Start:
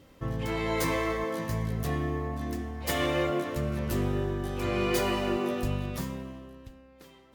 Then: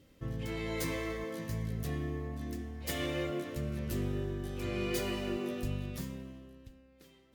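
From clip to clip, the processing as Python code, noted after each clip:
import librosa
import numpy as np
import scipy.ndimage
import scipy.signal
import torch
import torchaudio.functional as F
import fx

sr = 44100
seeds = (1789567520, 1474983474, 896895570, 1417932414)

y = fx.peak_eq(x, sr, hz=950.0, db=-9.0, octaves=1.3)
y = y * librosa.db_to_amplitude(-5.0)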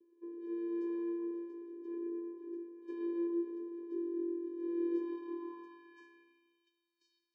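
y = fx.vocoder(x, sr, bands=8, carrier='square', carrier_hz=341.0)
y = fx.filter_sweep_bandpass(y, sr, from_hz=500.0, to_hz=5000.0, start_s=4.9, end_s=7.1, q=2.5)
y = y * librosa.db_to_amplitude(6.5)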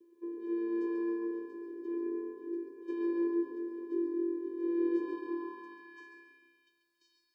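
y = fx.echo_feedback(x, sr, ms=139, feedback_pct=41, wet_db=-7.0)
y = y * librosa.db_to_amplitude(6.0)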